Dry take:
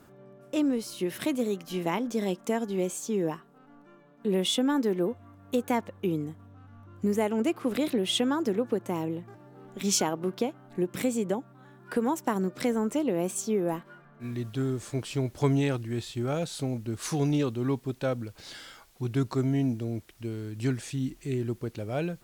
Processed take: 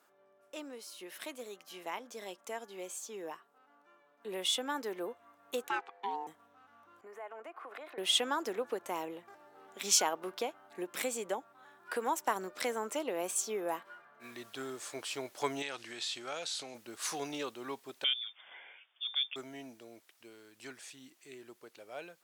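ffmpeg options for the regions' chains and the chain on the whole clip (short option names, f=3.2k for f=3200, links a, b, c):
-filter_complex "[0:a]asettb=1/sr,asplit=3[a][b][c];[a]atrim=end=5.684[d];[b]atrim=start=5.68:end=6.27,asetpts=PTS-STARTPTS,afade=t=in:d=0.004:c=qsin,afade=t=out:st=0.586:d=0.004:c=qsin,lowpass=4.7k,equalizer=f=470:w=2.9:g=-8.5,aeval=exprs='val(0)*sin(2*PI*600*n/s)':c=same[e];[c]atrim=start=6.266[f];[d][e]acrossfade=d=0.004:c1=hsin:c2=qsin[g];[g][f]acrossfade=d=0.004:c1=qsin:c2=hsin,asettb=1/sr,asplit=3[h][i][j];[h]atrim=end=7.014[k];[i]atrim=start=7.01:end=7.98,asetpts=PTS-STARTPTS,afade=t=in:d=0.004:c=qsin,afade=t=out:st=0.966:d=0.004:c=qsin,acrossover=split=530 2000:gain=0.126 1 0.0708[l][m][n];[l][m][n]amix=inputs=3:normalize=0,aecho=1:1:2.8:0.3,atrim=end_sample=42777,acompressor=threshold=-39dB:ratio=4:attack=3.2:release=140:knee=1:detection=peak[o];[j]atrim=start=7.976[p];[k][o]acrossfade=d=0.004:c1=hsin:c2=qsin[q];[q][p]acrossfade=d=0.004:c1=qsin:c2=hsin,asettb=1/sr,asplit=3[r][s][t];[r]atrim=end=15.624[u];[s]atrim=start=15.62:end=16.75,asetpts=PTS-STARTPTS,afade=t=in:d=0.004:c=qsin,afade=t=out:st=1.126:d=0.004:c=qsin,highshelf=f=2.1k:g=11.5,acompressor=threshold=-30dB:ratio=12:attack=3.2:release=140:knee=1:detection=peak,lowpass=6k[v];[t]atrim=start=16.746[w];[u][v]acrossfade=d=0.004:c1=hsin:c2=qsin[x];[x][w]acrossfade=d=0.004:c1=qsin:c2=hsin,asettb=1/sr,asplit=3[y][z][aa];[y]atrim=end=18.044[ab];[z]atrim=start=18.04:end=19.36,asetpts=PTS-STARTPTS,afade=t=in:d=0.004:c=qsin,afade=t=out:st=1.316:d=0.004:c=qsin,highpass=150,lowpass=f=3.1k:t=q:w=0.5098,lowpass=f=3.1k:t=q:w=0.6013,lowpass=f=3.1k:t=q:w=0.9,lowpass=f=3.1k:t=q:w=2.563,afreqshift=-3700[ac];[aa]atrim=start=19.356[ad];[ab][ac]acrossfade=d=0.004:c1=hsin:c2=qsin[ae];[ae][ad]acrossfade=d=0.004:c1=qsin:c2=hsin,highpass=660,dynaudnorm=f=290:g=31:m=8.5dB,volume=-8dB"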